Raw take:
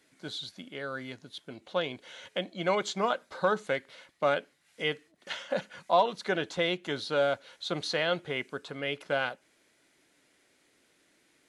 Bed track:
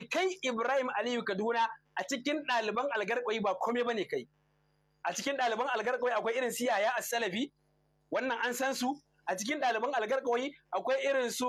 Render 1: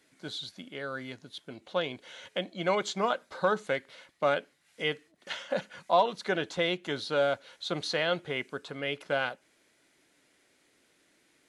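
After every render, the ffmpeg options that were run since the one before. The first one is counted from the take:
-af anull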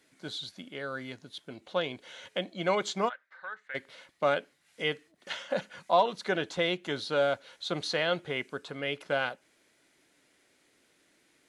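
-filter_complex "[0:a]asplit=3[a][b][c];[a]afade=t=out:st=3.08:d=0.02[d];[b]bandpass=f=1.8k:t=q:w=5.1,afade=t=in:st=3.08:d=0.02,afade=t=out:st=3.74:d=0.02[e];[c]afade=t=in:st=3.74:d=0.02[f];[d][e][f]amix=inputs=3:normalize=0"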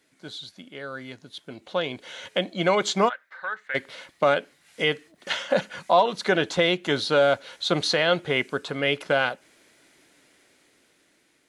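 -af "alimiter=limit=-18.5dB:level=0:latency=1:release=225,dynaudnorm=f=520:g=7:m=9.5dB"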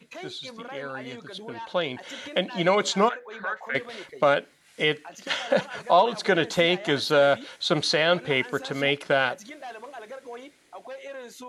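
-filter_complex "[1:a]volume=-9dB[a];[0:a][a]amix=inputs=2:normalize=0"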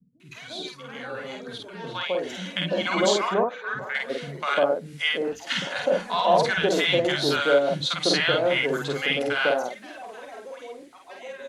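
-filter_complex "[0:a]asplit=2[a][b];[b]adelay=49,volume=-2.5dB[c];[a][c]amix=inputs=2:normalize=0,acrossover=split=200|960[d][e][f];[f]adelay=200[g];[e]adelay=350[h];[d][h][g]amix=inputs=3:normalize=0"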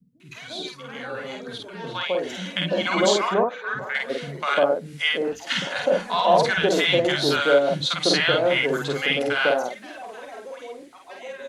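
-af "volume=2dB"

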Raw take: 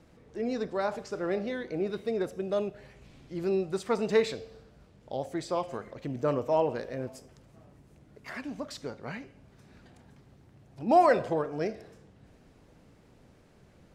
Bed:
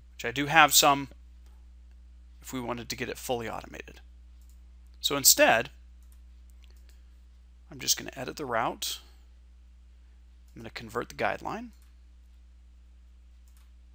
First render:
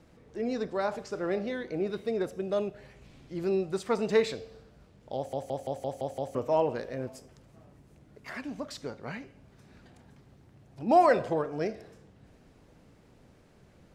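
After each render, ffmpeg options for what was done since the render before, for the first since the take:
-filter_complex "[0:a]asplit=8[a][b][c][d][e][f][g][h];[a]atrim=end=5.332[i];[b]atrim=start=5.158:end=5.332[j];[c]atrim=start=5.158:end=5.332[k];[d]atrim=start=5.158:end=5.332[l];[e]atrim=start=5.158:end=5.332[m];[f]atrim=start=5.158:end=5.332[n];[g]atrim=start=5.158:end=5.332[o];[h]atrim=start=6.348[p];[i][j]acrossfade=d=0.004:c1=hsin:c2=hsin[q];[q][k]acrossfade=d=0.004:c1=hsin:c2=hsin[r];[r][l]acrossfade=d=0.004:c1=hsin:c2=hsin[s];[s][m]acrossfade=d=0.004:c1=hsin:c2=hsin[t];[t][n]acrossfade=d=0.004:c1=hsin:c2=hsin[u];[u][o]acrossfade=d=0.004:c1=hsin:c2=hsin[v];[v][p]acrossfade=d=0.004:c1=hsin:c2=hsin"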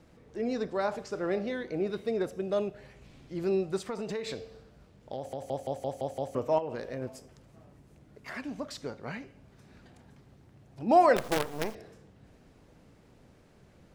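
-filter_complex "[0:a]asettb=1/sr,asplit=3[a][b][c];[a]atrim=end=3.814[d];[b]atrim=start=3.81:end=5.5,asetpts=PTS-STARTPTS,afade=t=in:d=0.004:c=qsin,afade=t=out:st=1.686:d=0.004:c=qsin,acompressor=threshold=-31dB:ratio=10:attack=3.2:release=140:knee=1:detection=peak[e];[c]atrim=start=5.496[f];[d][e]acrossfade=d=0.004:c1=hsin:c2=qsin[g];[g][f]acrossfade=d=0.004:c1=qsin:c2=hsin,asettb=1/sr,asplit=3[h][i][j];[h]atrim=end=6.584[k];[i]atrim=start=6.58:end=7.02,asetpts=PTS-STARTPTS,afade=t=in:d=0.004:c=qsin,afade=t=out:st=0.436:d=0.004:c=qsin,acompressor=threshold=-31dB:ratio=6:attack=3.2:release=140:knee=1:detection=peak[l];[j]atrim=start=7.016[m];[k][l]acrossfade=d=0.004:c1=hsin:c2=qsin[n];[n][m]acrossfade=d=0.004:c1=qsin:c2=hsin,asettb=1/sr,asplit=3[o][p][q];[o]atrim=end=11.164[r];[p]atrim=start=11.16:end=11.75,asetpts=PTS-STARTPTS,afade=t=in:d=0.004:c=qsin,afade=t=out:st=0.586:d=0.004:c=qsin,acrusher=bits=5:dc=4:mix=0:aa=0.000001[s];[q]atrim=start=11.746[t];[r][s]acrossfade=d=0.004:c1=hsin:c2=qsin[u];[u][t]acrossfade=d=0.004:c1=qsin:c2=hsin"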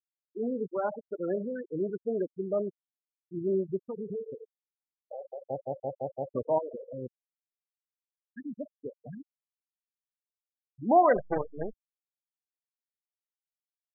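-af "lowpass=2.8k,afftfilt=real='re*gte(hypot(re,im),0.0708)':imag='im*gte(hypot(re,im),0.0708)':win_size=1024:overlap=0.75"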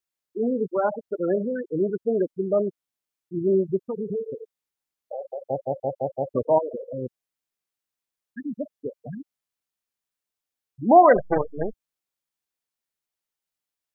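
-af "volume=7.5dB"

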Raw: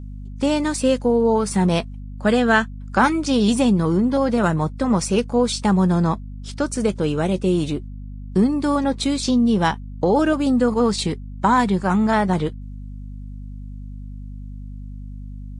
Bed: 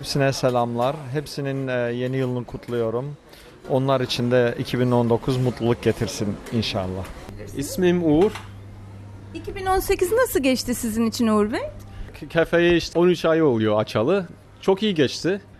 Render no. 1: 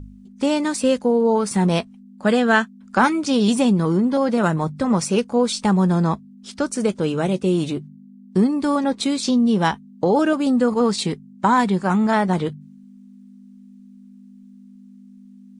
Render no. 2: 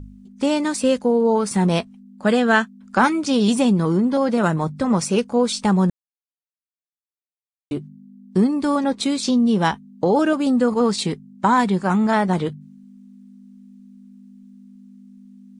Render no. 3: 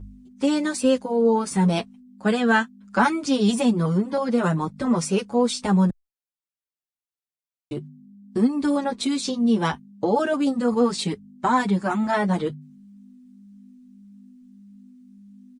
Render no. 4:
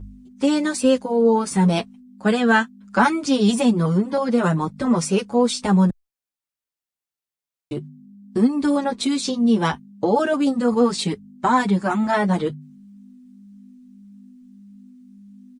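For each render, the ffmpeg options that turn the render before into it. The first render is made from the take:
-af "bandreject=f=50:t=h:w=4,bandreject=f=100:t=h:w=4,bandreject=f=150:t=h:w=4"
-filter_complex "[0:a]asplit=3[a][b][c];[a]atrim=end=5.9,asetpts=PTS-STARTPTS,afade=t=out:st=5.896:d=0.004:c=hsin[d];[b]atrim=start=5.9:end=7.71,asetpts=PTS-STARTPTS,volume=0[e];[c]atrim=start=7.71,asetpts=PTS-STARTPTS,afade=t=in:d=0.004:c=hsin[f];[d][e][f]concat=n=3:v=0:a=1"
-filter_complex "[0:a]asplit=2[a][b];[b]adelay=6.8,afreqshift=1.7[c];[a][c]amix=inputs=2:normalize=1"
-af "volume=2.5dB"

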